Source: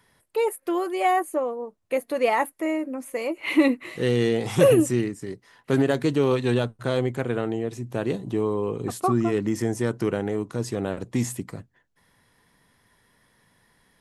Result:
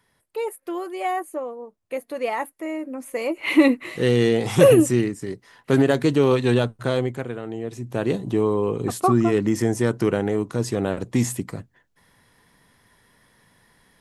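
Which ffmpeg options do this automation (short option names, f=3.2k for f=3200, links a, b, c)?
-af "volume=14.5dB,afade=t=in:st=2.69:d=0.7:silence=0.421697,afade=t=out:st=6.79:d=0.61:silence=0.298538,afade=t=in:st=7.4:d=0.75:silence=0.281838"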